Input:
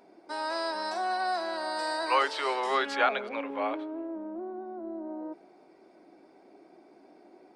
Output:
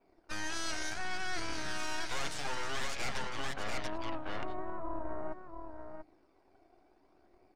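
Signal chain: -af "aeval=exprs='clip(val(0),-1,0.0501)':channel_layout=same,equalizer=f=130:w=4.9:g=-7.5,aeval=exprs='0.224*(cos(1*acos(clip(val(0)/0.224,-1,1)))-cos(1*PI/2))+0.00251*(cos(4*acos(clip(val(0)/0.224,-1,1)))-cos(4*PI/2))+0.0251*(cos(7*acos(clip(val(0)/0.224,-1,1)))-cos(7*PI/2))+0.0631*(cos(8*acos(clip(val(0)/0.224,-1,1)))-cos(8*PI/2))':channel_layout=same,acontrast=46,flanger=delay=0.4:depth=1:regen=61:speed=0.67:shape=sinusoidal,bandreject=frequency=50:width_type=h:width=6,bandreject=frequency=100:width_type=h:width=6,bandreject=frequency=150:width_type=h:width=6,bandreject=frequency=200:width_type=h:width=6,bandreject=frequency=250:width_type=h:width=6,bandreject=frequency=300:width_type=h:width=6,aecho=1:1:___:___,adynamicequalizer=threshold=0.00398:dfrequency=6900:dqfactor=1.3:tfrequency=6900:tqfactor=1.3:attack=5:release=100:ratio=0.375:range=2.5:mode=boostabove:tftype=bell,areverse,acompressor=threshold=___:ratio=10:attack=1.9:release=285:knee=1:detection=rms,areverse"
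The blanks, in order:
688, 0.447, -27dB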